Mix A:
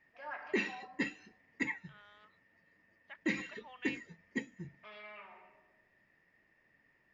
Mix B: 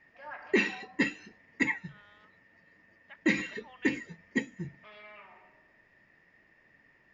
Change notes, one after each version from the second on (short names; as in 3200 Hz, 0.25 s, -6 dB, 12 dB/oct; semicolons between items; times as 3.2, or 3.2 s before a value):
background +7.5 dB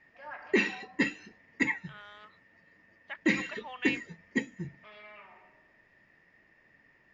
second voice +10.0 dB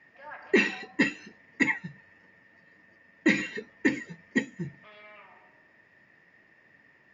second voice: muted; background +3.5 dB; master: add HPF 86 Hz